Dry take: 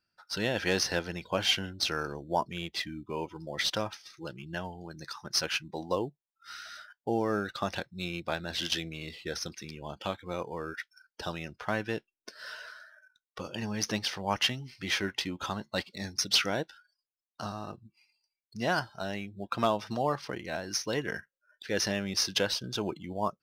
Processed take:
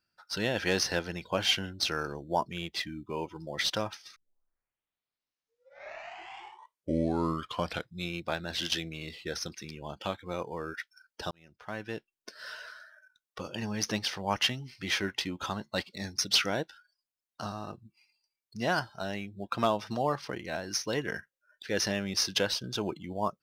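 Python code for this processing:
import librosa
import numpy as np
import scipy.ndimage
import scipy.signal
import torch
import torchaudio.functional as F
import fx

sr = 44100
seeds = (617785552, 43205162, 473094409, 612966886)

y = fx.edit(x, sr, fx.tape_start(start_s=4.16, length_s=3.95),
    fx.fade_in_span(start_s=11.31, length_s=1.0), tone=tone)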